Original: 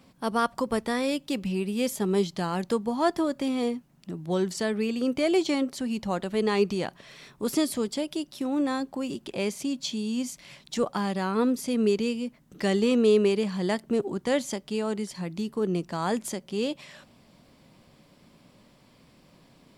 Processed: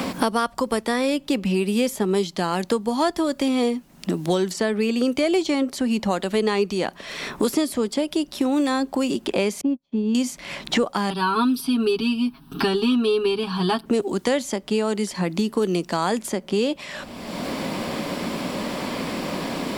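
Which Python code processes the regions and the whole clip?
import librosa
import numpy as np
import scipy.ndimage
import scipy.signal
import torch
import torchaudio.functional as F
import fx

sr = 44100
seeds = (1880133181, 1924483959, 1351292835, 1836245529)

y = fx.chain(x, sr, fx.lowpass(hz=1100.0, slope=12),
    fx.upward_expand(threshold_db=-51.0, expansion=2.5), at=(9.61, 10.15))
y = fx.chain(y, sr, fx.fixed_phaser(hz=2000.0, stages=6),
    fx.comb(ms=7.3, depth=0.98), at=(11.1, 13.86))
y = fx.peak_eq(y, sr, hz=130.0, db=-11.5, octaves=0.59)
y = fx.band_squash(y, sr, depth_pct=100)
y = F.gain(torch.from_numpy(y), 5.5).numpy()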